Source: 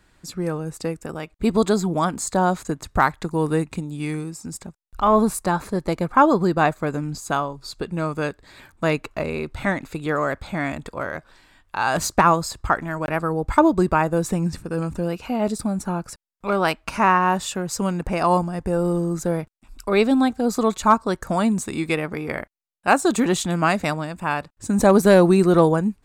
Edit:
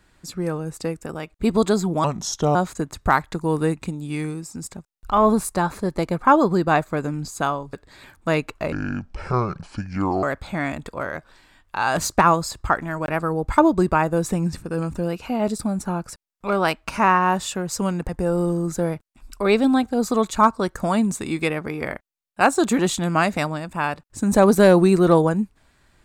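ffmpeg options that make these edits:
ffmpeg -i in.wav -filter_complex "[0:a]asplit=7[link_01][link_02][link_03][link_04][link_05][link_06][link_07];[link_01]atrim=end=2.044[link_08];[link_02]atrim=start=2.04:end=2.45,asetpts=PTS-STARTPTS,asetrate=35280,aresample=44100,atrim=end_sample=22601,asetpts=PTS-STARTPTS[link_09];[link_03]atrim=start=2.446:end=7.632[link_10];[link_04]atrim=start=8.288:end=9.284[link_11];[link_05]atrim=start=9.28:end=10.23,asetpts=PTS-STARTPTS,asetrate=27783,aresample=44100[link_12];[link_06]atrim=start=10.226:end=18.092[link_13];[link_07]atrim=start=18.558[link_14];[link_08][link_09]acrossfade=duration=0.004:curve1=hsin:curve2=hsin[link_15];[link_15][link_10]acrossfade=duration=0.004:curve1=hsin:curve2=hsin[link_16];[link_16][link_11]acrossfade=duration=0.004:curve1=hsin:curve2=hsin[link_17];[link_17][link_12]acrossfade=duration=0.004:curve1=hsin:curve2=hsin[link_18];[link_18][link_13]acrossfade=duration=0.004:curve1=hsin:curve2=hsin[link_19];[link_19][link_14]acrossfade=duration=0.004:curve1=hsin:curve2=hsin" out.wav

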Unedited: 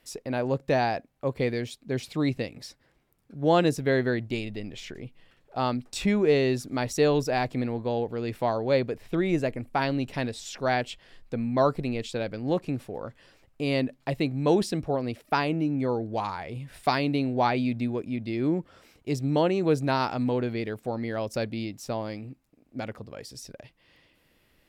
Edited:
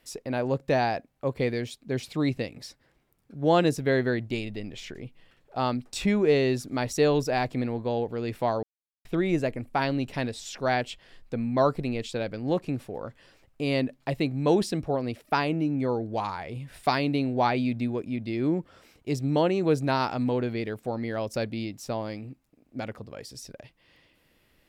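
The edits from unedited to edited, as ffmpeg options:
ffmpeg -i in.wav -filter_complex "[0:a]asplit=3[link_01][link_02][link_03];[link_01]atrim=end=8.63,asetpts=PTS-STARTPTS,afade=type=out:start_time=8.626:duration=0.004:curve=hsin[link_04];[link_02]atrim=start=8.63:end=9.05,asetpts=PTS-STARTPTS,volume=0[link_05];[link_03]atrim=start=9.05,asetpts=PTS-STARTPTS,afade=type=in:duration=0.004:curve=hsin[link_06];[link_04][link_05][link_06]concat=n=3:v=0:a=1" out.wav

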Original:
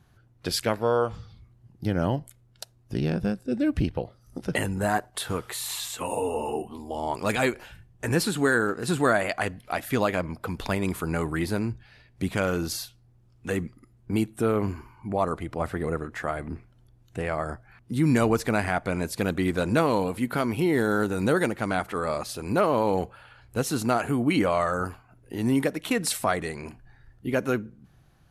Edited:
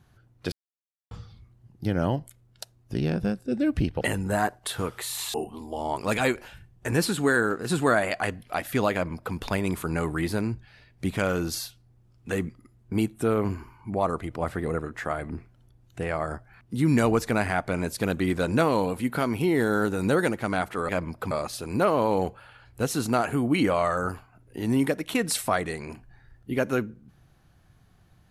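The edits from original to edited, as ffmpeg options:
ffmpeg -i in.wav -filter_complex "[0:a]asplit=7[link_01][link_02][link_03][link_04][link_05][link_06][link_07];[link_01]atrim=end=0.52,asetpts=PTS-STARTPTS,afade=type=out:start_time=0.516:duration=0.004:curve=hsin[link_08];[link_02]atrim=start=0.52:end=1.11,asetpts=PTS-STARTPTS,volume=0[link_09];[link_03]atrim=start=1.11:end=4.012,asetpts=PTS-STARTPTS,afade=type=in:duration=0.004:curve=hsin[link_10];[link_04]atrim=start=4.518:end=5.852[link_11];[link_05]atrim=start=6.518:end=22.072[link_12];[link_06]atrim=start=10.108:end=10.532[link_13];[link_07]atrim=start=22.068[link_14];[link_08][link_09][link_10]concat=n=3:v=0:a=1[link_15];[link_15][link_11]acrossfade=duration=0.004:curve1=hsin:curve2=hsin[link_16];[link_16][link_12]acrossfade=duration=0.004:curve1=hsin:curve2=hsin[link_17];[link_17][link_13]acrossfade=duration=0.004:curve1=hsin:curve2=hsin[link_18];[link_18][link_14]acrossfade=duration=0.004:curve1=hsin:curve2=hsin" out.wav

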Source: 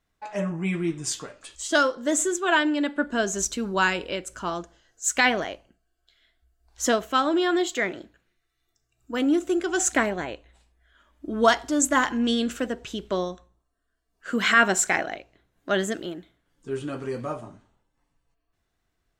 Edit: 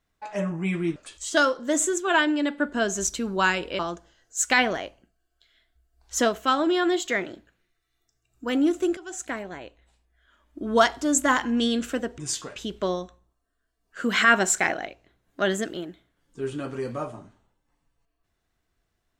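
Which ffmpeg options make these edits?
ffmpeg -i in.wav -filter_complex "[0:a]asplit=6[link_01][link_02][link_03][link_04][link_05][link_06];[link_01]atrim=end=0.962[link_07];[link_02]atrim=start=1.338:end=4.172[link_08];[link_03]atrim=start=4.458:end=9.64,asetpts=PTS-STARTPTS,afade=type=out:start_time=5.178:duration=0.004:curve=hsin:silence=0.16788[link_09];[link_04]atrim=start=9.64:end=12.852,asetpts=PTS-STARTPTS,afade=type=in:duration=1.86:silence=0.16788[link_10];[link_05]atrim=start=0.958:end=1.342[link_11];[link_06]atrim=start=12.848[link_12];[link_07][link_08]acrossfade=duration=0.004:curve1=hsin:curve2=hsin[link_13];[link_09][link_10]concat=n=2:v=0:a=1[link_14];[link_13][link_14]acrossfade=duration=0.004:curve1=hsin:curve2=hsin[link_15];[link_15][link_11]acrossfade=duration=0.004:curve1=hsin:curve2=hsin[link_16];[link_16][link_12]acrossfade=duration=0.004:curve1=hsin:curve2=hsin" out.wav

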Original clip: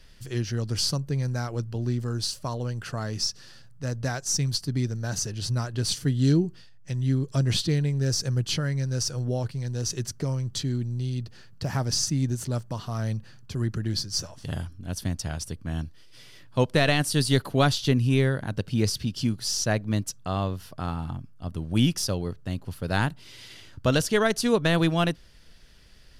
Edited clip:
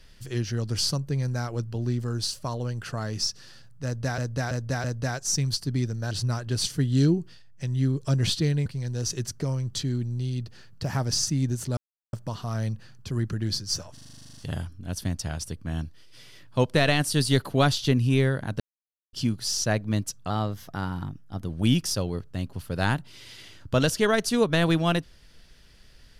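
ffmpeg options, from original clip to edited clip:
ffmpeg -i in.wav -filter_complex "[0:a]asplit=22[link_01][link_02][link_03][link_04][link_05][link_06][link_07][link_08][link_09][link_10][link_11][link_12][link_13][link_14][link_15][link_16][link_17][link_18][link_19][link_20][link_21][link_22];[link_01]atrim=end=4.182[link_23];[link_02]atrim=start=3.848:end=4.182[link_24];[link_03]atrim=start=3.848:end=4.182[link_25];[link_04]atrim=start=3.848:end=5.122[link_26];[link_05]atrim=start=5.378:end=7.932[link_27];[link_06]atrim=start=9.458:end=12.57,asetpts=PTS-STARTPTS,afade=type=out:start_time=3.108:duration=0.004:curve=hsin,apad=pad_dur=0.36[link_28];[link_07]atrim=start=12.57:end=14.412,asetpts=PTS-STARTPTS,afade=type=in:duration=0.004:curve=hsin[link_29];[link_08]atrim=start=14.368:end=14.412[link_30];[link_09]atrim=start=14.368:end=14.412[link_31];[link_10]atrim=start=14.368:end=14.412[link_32];[link_11]atrim=start=14.368:end=14.412[link_33];[link_12]atrim=start=14.368:end=14.412[link_34];[link_13]atrim=start=14.368:end=14.412[link_35];[link_14]atrim=start=14.368:end=14.412[link_36];[link_15]atrim=start=14.368:end=14.412[link_37];[link_16]atrim=start=14.368:end=14.412[link_38];[link_17]atrim=start=14.368:end=14.412[link_39];[link_18]atrim=start=14.368:end=18.6,asetpts=PTS-STARTPTS,afade=type=out:start_time=4.228:duration=0.004:curve=hsin[link_40];[link_19]atrim=start=18.6:end=19.13,asetpts=PTS-STARTPTS,volume=0[link_41];[link_20]atrim=start=19.13:end=20.304,asetpts=PTS-STARTPTS,afade=type=in:duration=0.004:curve=hsin[link_42];[link_21]atrim=start=20.3:end=21.62,asetpts=PTS-STARTPTS,asetrate=48510,aresample=44100[link_43];[link_22]atrim=start=21.616[link_44];[link_23][link_24]acrossfade=duration=0.004:curve1=hsin:curve2=hsin[link_45];[link_45][link_25]acrossfade=duration=0.004:curve1=hsin:curve2=hsin[link_46];[link_46][link_26]acrossfade=duration=0.004:curve1=hsin:curve2=hsin[link_47];[link_47][link_27]acrossfade=duration=0.004:curve1=hsin:curve2=hsin[link_48];[link_28][link_29]concat=n=2:v=0:a=1[link_49];[link_48][link_49]acrossfade=duration=0.004:curve1=hsin:curve2=hsin[link_50];[link_50][link_30]acrossfade=duration=0.004:curve1=hsin:curve2=hsin[link_51];[link_51][link_31]acrossfade=duration=0.004:curve1=hsin:curve2=hsin[link_52];[link_52][link_32]acrossfade=duration=0.004:curve1=hsin:curve2=hsin[link_53];[link_53][link_33]acrossfade=duration=0.004:curve1=hsin:curve2=hsin[link_54];[link_54][link_34]acrossfade=duration=0.004:curve1=hsin:curve2=hsin[link_55];[link_55][link_35]acrossfade=duration=0.004:curve1=hsin:curve2=hsin[link_56];[link_56][link_36]acrossfade=duration=0.004:curve1=hsin:curve2=hsin[link_57];[link_57][link_37]acrossfade=duration=0.004:curve1=hsin:curve2=hsin[link_58];[link_58][link_38]acrossfade=duration=0.004:curve1=hsin:curve2=hsin[link_59];[link_59][link_39]acrossfade=duration=0.004:curve1=hsin:curve2=hsin[link_60];[link_40][link_41][link_42]concat=n=3:v=0:a=1[link_61];[link_60][link_61]acrossfade=duration=0.004:curve1=hsin:curve2=hsin[link_62];[link_62][link_43]acrossfade=duration=0.004:curve1=hsin:curve2=hsin[link_63];[link_63][link_44]acrossfade=duration=0.004:curve1=hsin:curve2=hsin" out.wav

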